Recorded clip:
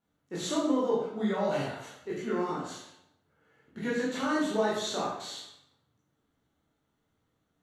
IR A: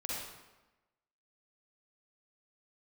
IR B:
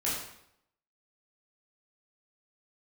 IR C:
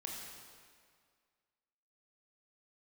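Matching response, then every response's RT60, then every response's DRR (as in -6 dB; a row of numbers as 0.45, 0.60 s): B; 1.1, 0.75, 2.0 s; -5.5, -7.5, -2.0 dB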